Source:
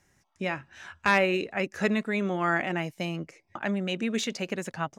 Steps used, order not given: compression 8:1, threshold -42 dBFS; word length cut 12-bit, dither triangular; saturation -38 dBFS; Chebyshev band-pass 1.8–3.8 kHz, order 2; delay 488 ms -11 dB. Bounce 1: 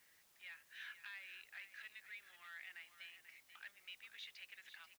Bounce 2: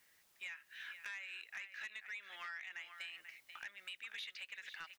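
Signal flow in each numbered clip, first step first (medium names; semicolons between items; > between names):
compression > saturation > Chebyshev band-pass > word length cut > delay; Chebyshev band-pass > word length cut > compression > delay > saturation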